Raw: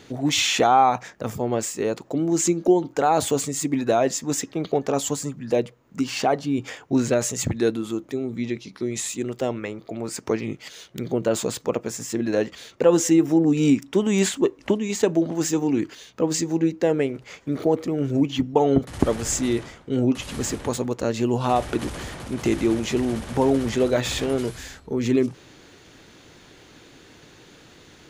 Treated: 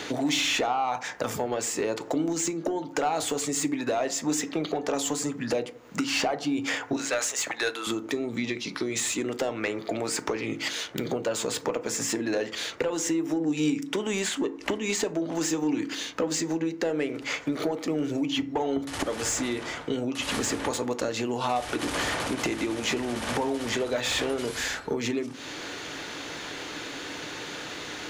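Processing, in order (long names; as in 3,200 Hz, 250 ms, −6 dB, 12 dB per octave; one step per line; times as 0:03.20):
0:06.96–0:07.87: high-pass filter 880 Hz 12 dB per octave
downward compressor 12 to 1, threshold −28 dBFS, peak gain reduction 17.5 dB
mid-hump overdrive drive 15 dB, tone 6,800 Hz, clips at −15 dBFS
feedback delay network reverb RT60 0.53 s, low-frequency decay 1.3×, high-frequency decay 0.4×, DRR 10 dB
multiband upward and downward compressor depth 40%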